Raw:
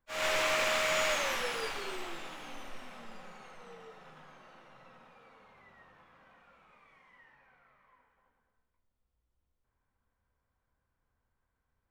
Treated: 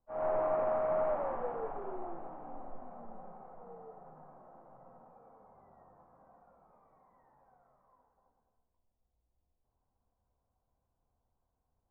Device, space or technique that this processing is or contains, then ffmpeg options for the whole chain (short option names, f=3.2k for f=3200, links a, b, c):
under water: -af "lowpass=f=1k:w=0.5412,lowpass=f=1k:w=1.3066,equalizer=f=720:t=o:w=0.36:g=7.5"